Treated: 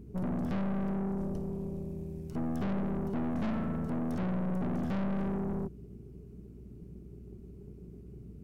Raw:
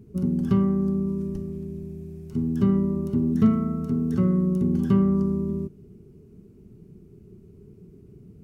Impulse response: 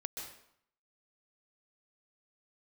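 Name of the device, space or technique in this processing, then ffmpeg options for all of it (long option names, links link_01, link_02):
valve amplifier with mains hum: -af "aeval=exprs='(tanh(35.5*val(0)+0.5)-tanh(0.5))/35.5':channel_layout=same,aeval=exprs='val(0)+0.00316*(sin(2*PI*60*n/s)+sin(2*PI*2*60*n/s)/2+sin(2*PI*3*60*n/s)/3+sin(2*PI*4*60*n/s)/4+sin(2*PI*5*60*n/s)/5)':channel_layout=same"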